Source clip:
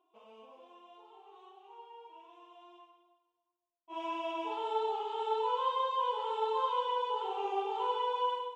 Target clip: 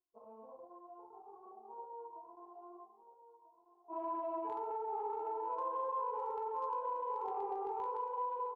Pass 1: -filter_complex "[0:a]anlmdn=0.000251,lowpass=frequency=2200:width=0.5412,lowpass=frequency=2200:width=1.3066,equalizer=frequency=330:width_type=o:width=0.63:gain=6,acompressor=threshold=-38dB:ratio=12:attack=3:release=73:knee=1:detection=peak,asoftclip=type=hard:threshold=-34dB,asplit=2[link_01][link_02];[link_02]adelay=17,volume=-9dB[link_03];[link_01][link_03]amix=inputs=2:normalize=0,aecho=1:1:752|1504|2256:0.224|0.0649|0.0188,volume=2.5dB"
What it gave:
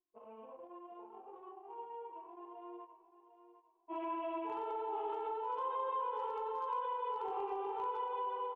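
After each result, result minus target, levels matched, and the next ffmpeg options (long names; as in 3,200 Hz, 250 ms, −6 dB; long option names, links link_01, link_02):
2,000 Hz band +9.5 dB; echo 538 ms early; 250 Hz band +3.5 dB
-filter_complex "[0:a]anlmdn=0.000251,lowpass=frequency=1100:width=0.5412,lowpass=frequency=1100:width=1.3066,equalizer=frequency=330:width_type=o:width=0.63:gain=6,acompressor=threshold=-38dB:ratio=12:attack=3:release=73:knee=1:detection=peak,asoftclip=type=hard:threshold=-34dB,asplit=2[link_01][link_02];[link_02]adelay=17,volume=-9dB[link_03];[link_01][link_03]amix=inputs=2:normalize=0,aecho=1:1:752|1504|2256:0.224|0.0649|0.0188,volume=2.5dB"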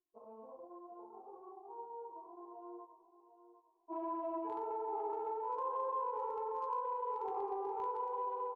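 echo 538 ms early; 250 Hz band +4.0 dB
-filter_complex "[0:a]anlmdn=0.000251,lowpass=frequency=1100:width=0.5412,lowpass=frequency=1100:width=1.3066,equalizer=frequency=330:width_type=o:width=0.63:gain=6,acompressor=threshold=-38dB:ratio=12:attack=3:release=73:knee=1:detection=peak,asoftclip=type=hard:threshold=-34dB,asplit=2[link_01][link_02];[link_02]adelay=17,volume=-9dB[link_03];[link_01][link_03]amix=inputs=2:normalize=0,aecho=1:1:1290|2580|3870:0.224|0.0649|0.0188,volume=2.5dB"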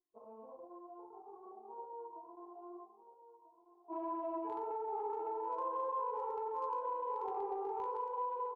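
250 Hz band +4.0 dB
-filter_complex "[0:a]anlmdn=0.000251,lowpass=frequency=1100:width=0.5412,lowpass=frequency=1100:width=1.3066,acompressor=threshold=-38dB:ratio=12:attack=3:release=73:knee=1:detection=peak,asoftclip=type=hard:threshold=-34dB,asplit=2[link_01][link_02];[link_02]adelay=17,volume=-9dB[link_03];[link_01][link_03]amix=inputs=2:normalize=0,aecho=1:1:1290|2580|3870:0.224|0.0649|0.0188,volume=2.5dB"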